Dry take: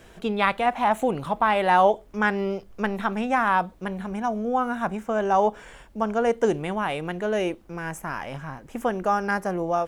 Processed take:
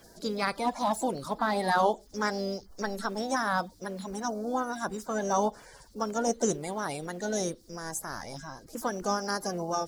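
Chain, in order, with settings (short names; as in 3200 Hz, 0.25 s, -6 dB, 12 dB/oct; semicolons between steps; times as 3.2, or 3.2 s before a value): bin magnitudes rounded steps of 30 dB; harmoniser +4 st -17 dB; resonant high shelf 3600 Hz +10.5 dB, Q 3; gain -5.5 dB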